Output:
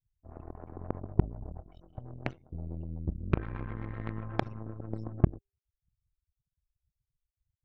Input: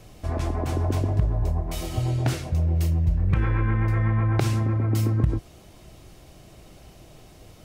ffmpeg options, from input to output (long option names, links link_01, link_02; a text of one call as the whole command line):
ffmpeg -i in.wav -filter_complex "[0:a]afftfilt=real='re*gte(hypot(re,im),0.0355)':imag='im*gte(hypot(re,im),0.0355)':win_size=1024:overlap=0.75,bandreject=frequency=399.9:width_type=h:width=4,bandreject=frequency=799.8:width_type=h:width=4,bandreject=frequency=1199.7:width_type=h:width=4,bandreject=frequency=1599.6:width_type=h:width=4,bandreject=frequency=1999.5:width_type=h:width=4,bandreject=frequency=2399.4:width_type=h:width=4,bandreject=frequency=2799.3:width_type=h:width=4,bandreject=frequency=3199.2:width_type=h:width=4,bandreject=frequency=3599.1:width_type=h:width=4,bandreject=frequency=3999:width_type=h:width=4,bandreject=frequency=4398.9:width_type=h:width=4,bandreject=frequency=4798.8:width_type=h:width=4,bandreject=frequency=5198.7:width_type=h:width=4,bandreject=frequency=5598.6:width_type=h:width=4,bandreject=frequency=5998.5:width_type=h:width=4,bandreject=frequency=6398.4:width_type=h:width=4,bandreject=frequency=6798.3:width_type=h:width=4,bandreject=frequency=7198.2:width_type=h:width=4,bandreject=frequency=7598.1:width_type=h:width=4,bandreject=frequency=7998:width_type=h:width=4,bandreject=frequency=8397.9:width_type=h:width=4,bandreject=frequency=8797.8:width_type=h:width=4,bandreject=frequency=9197.7:width_type=h:width=4,bandreject=frequency=9597.6:width_type=h:width=4,bandreject=frequency=9997.5:width_type=h:width=4,bandreject=frequency=10397.4:width_type=h:width=4,bandreject=frequency=10797.3:width_type=h:width=4,bandreject=frequency=11197.2:width_type=h:width=4,aeval=exprs='0.355*(cos(1*acos(clip(val(0)/0.355,-1,1)))-cos(1*PI/2))+0.112*(cos(3*acos(clip(val(0)/0.355,-1,1)))-cos(3*PI/2))+0.00501*(cos(8*acos(clip(val(0)/0.355,-1,1)))-cos(8*PI/2))':channel_layout=same,asplit=2[link_01][link_02];[link_02]acrusher=bits=2:mix=0:aa=0.5,volume=-4dB[link_03];[link_01][link_03]amix=inputs=2:normalize=0,aemphasis=mode=reproduction:type=50fm,volume=-4.5dB" out.wav